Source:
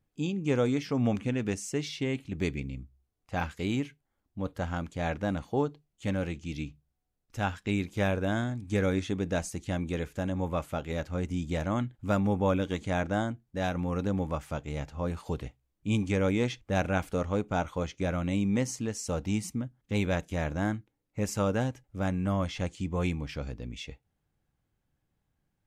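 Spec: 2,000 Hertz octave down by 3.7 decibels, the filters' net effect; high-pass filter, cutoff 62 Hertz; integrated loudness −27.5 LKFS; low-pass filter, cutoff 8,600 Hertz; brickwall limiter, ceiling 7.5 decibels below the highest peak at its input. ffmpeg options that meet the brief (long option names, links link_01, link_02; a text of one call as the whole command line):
ffmpeg -i in.wav -af "highpass=62,lowpass=8600,equalizer=frequency=2000:width_type=o:gain=-5,volume=6dB,alimiter=limit=-14.5dB:level=0:latency=1" out.wav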